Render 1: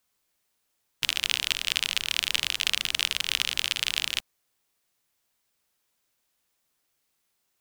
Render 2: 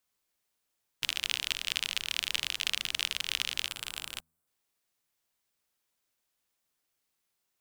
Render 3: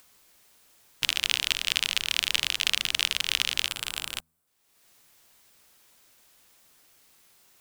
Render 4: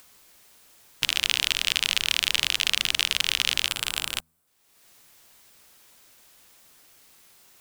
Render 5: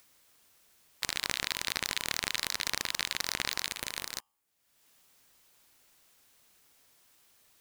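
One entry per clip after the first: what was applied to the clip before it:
spectral gain 3.67–4.48, 1600–7200 Hz -7 dB; de-hum 79.42 Hz, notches 3; gain -5.5 dB
upward compressor, threshold -52 dBFS; gain +6 dB
limiter -6 dBFS, peak gain reduction 4.5 dB; gain +4.5 dB
polarity switched at an audio rate 1000 Hz; gain -9 dB

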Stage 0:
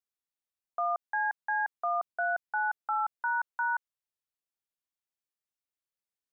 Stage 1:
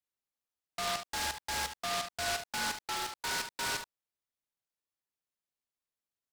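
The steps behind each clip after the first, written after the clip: overloaded stage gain 30 dB; on a send: early reflections 44 ms -11 dB, 73 ms -9 dB; on the sum: noise-modulated delay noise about 2900 Hz, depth 0.13 ms; gain -2 dB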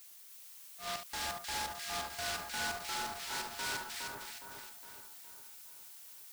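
auto swell 0.12 s; added noise blue -50 dBFS; split-band echo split 1600 Hz, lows 0.413 s, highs 0.308 s, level -3 dB; gain -5 dB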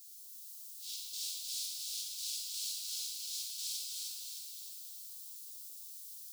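inverse Chebyshev high-pass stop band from 1900 Hz, stop band 40 dB; plate-style reverb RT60 2.6 s, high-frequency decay 0.75×, DRR -2.5 dB

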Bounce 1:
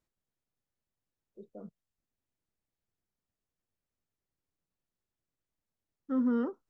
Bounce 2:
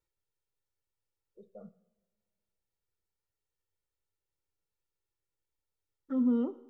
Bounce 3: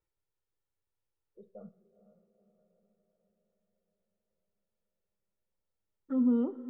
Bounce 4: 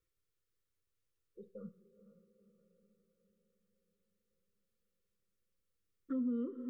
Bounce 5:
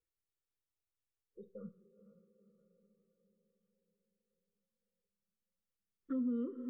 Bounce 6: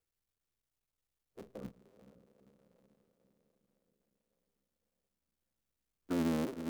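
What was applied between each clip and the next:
envelope flanger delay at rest 2.2 ms, full sweep at -28.5 dBFS; two-slope reverb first 0.67 s, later 2.1 s, from -19 dB, DRR 11.5 dB
high shelf 2600 Hz -10.5 dB; diffused feedback echo 0.477 s, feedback 57%, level -14 dB; gain +1 dB
elliptic band-stop 530–1100 Hz, stop band 40 dB; compressor 3:1, threshold -39 dBFS, peak gain reduction 11.5 dB; gain +2 dB
spectral noise reduction 10 dB
cycle switcher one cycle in 3, muted; gain +4.5 dB

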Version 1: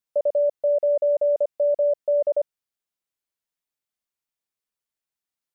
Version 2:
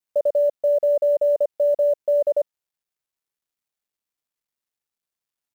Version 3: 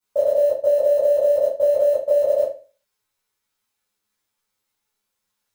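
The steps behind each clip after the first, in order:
bell 790 Hz -4 dB 0.6 oct; companded quantiser 8-bit; gain +3 dB
reverb RT60 0.35 s, pre-delay 9 ms, DRR -11.5 dB

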